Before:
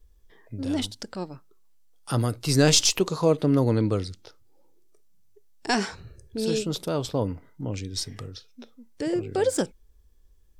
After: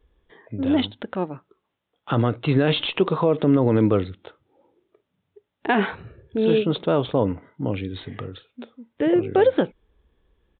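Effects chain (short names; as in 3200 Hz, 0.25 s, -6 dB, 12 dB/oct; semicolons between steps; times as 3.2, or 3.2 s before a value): HPF 190 Hz 6 dB/oct; high shelf 3100 Hz -6.5 dB; limiter -17.5 dBFS, peak gain reduction 10 dB; downsampling 8000 Hz; gain +9 dB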